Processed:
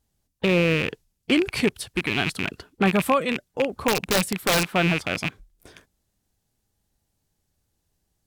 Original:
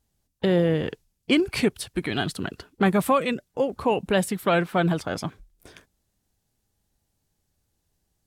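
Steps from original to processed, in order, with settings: rattling part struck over -31 dBFS, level -14 dBFS; 3.88–4.7 wrapped overs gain 13 dB

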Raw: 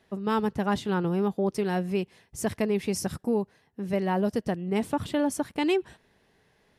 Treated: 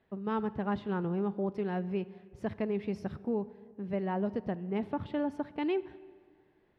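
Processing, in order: air absorption 350 m; on a send: reverb RT60 1.9 s, pre-delay 37 ms, DRR 17 dB; on the sum: gain -5.5 dB

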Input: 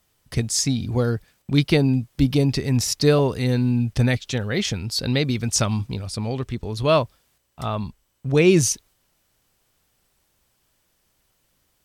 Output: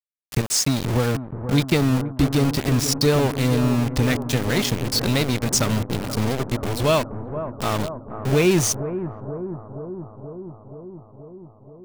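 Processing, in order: compressor 2:1, threshold -24 dBFS, peak gain reduction 7.5 dB; sample gate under -27 dBFS; on a send: analogue delay 0.478 s, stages 4096, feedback 72%, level -10 dB; on the sum: gain +5 dB

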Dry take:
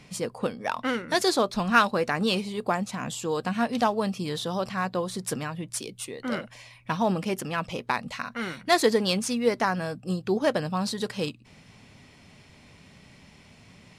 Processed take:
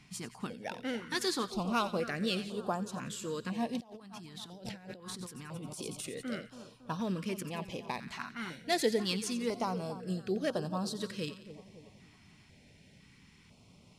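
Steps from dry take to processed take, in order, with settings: split-band echo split 1400 Hz, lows 0.278 s, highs 88 ms, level -13 dB; 3.8–6.22 negative-ratio compressor -38 dBFS, ratio -1; stepped notch 2 Hz 520–2100 Hz; gain -7 dB

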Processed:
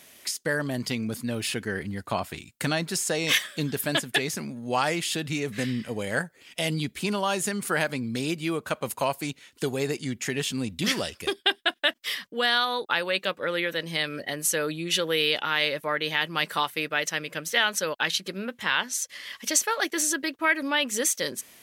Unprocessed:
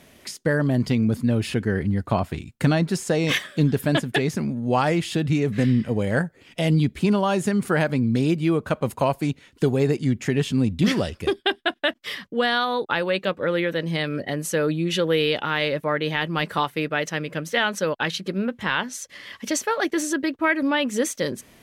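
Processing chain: tilt +3 dB/oct; gain -3 dB

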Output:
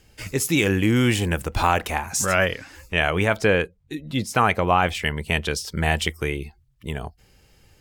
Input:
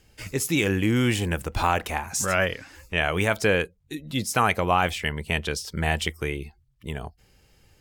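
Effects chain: 3.1–4.95 high shelf 4700 Hz -9 dB; gain +3 dB

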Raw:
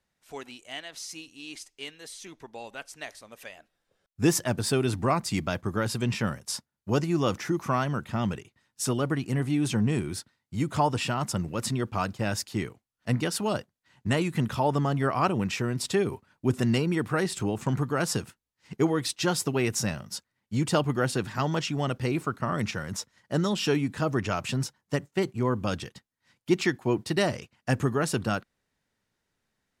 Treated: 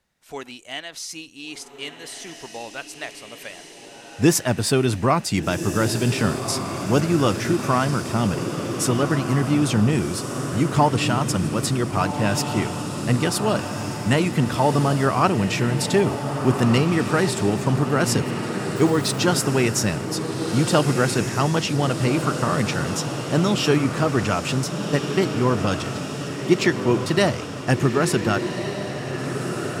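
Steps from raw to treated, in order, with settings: diffused feedback echo 1.509 s, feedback 61%, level -7 dB; 18.76–19.2 sample gate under -39 dBFS; gain +6 dB

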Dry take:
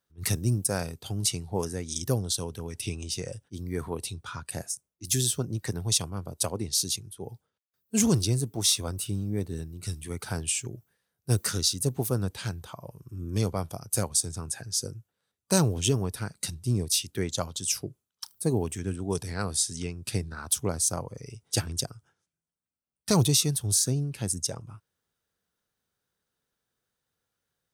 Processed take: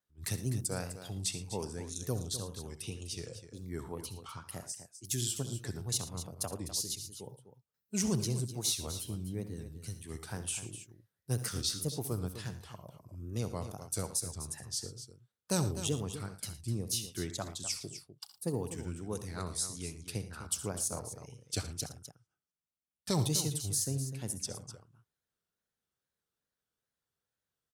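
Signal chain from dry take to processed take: wow and flutter 150 cents; tapped delay 66/81/113/252 ms -14/-17/-17/-11.5 dB; gain -8.5 dB

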